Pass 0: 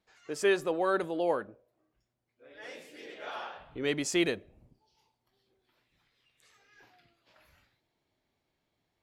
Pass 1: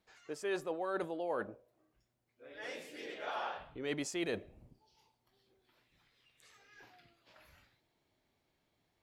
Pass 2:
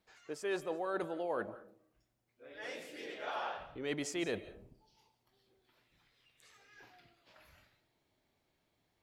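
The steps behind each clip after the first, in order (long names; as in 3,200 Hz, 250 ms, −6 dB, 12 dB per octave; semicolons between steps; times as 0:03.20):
dynamic equaliser 750 Hz, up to +4 dB, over −44 dBFS, Q 1; reversed playback; downward compressor 5 to 1, threshold −36 dBFS, peak gain reduction 14.5 dB; reversed playback; level +1 dB
convolution reverb RT60 0.40 s, pre-delay 120 ms, DRR 14.5 dB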